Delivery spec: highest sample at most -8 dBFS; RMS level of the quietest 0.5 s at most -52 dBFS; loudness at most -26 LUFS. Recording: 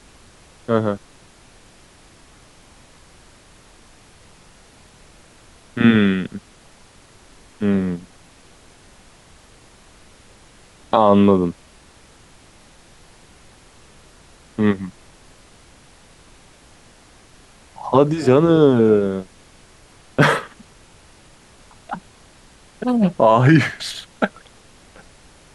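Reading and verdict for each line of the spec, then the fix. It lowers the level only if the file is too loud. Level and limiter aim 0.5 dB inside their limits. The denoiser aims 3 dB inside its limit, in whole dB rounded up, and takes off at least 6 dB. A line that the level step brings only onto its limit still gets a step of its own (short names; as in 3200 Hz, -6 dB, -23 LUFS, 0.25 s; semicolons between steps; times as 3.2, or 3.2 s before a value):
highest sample -2.5 dBFS: fail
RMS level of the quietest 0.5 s -49 dBFS: fail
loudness -17.5 LUFS: fail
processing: gain -9 dB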